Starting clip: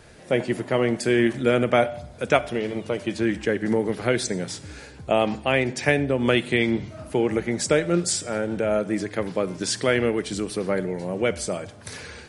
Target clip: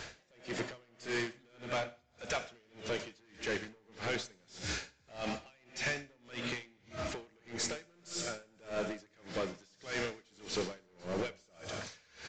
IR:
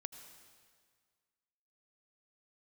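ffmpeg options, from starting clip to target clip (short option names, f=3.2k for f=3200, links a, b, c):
-filter_complex "[0:a]tiltshelf=f=880:g=-6,acompressor=threshold=-33dB:ratio=4,asoftclip=type=hard:threshold=-35.5dB,aecho=1:1:198|488:0.15|0.126[a];[1:a]atrim=start_sample=2205[b];[a][b]afir=irnorm=-1:irlink=0,aeval=exprs='0.0237*(cos(1*acos(clip(val(0)/0.0237,-1,1)))-cos(1*PI/2))+0.00188*(cos(2*acos(clip(val(0)/0.0237,-1,1)))-cos(2*PI/2))':c=same,aresample=16000,aresample=44100,aeval=exprs='val(0)*pow(10,-33*(0.5-0.5*cos(2*PI*1.7*n/s))/20)':c=same,volume=9.5dB"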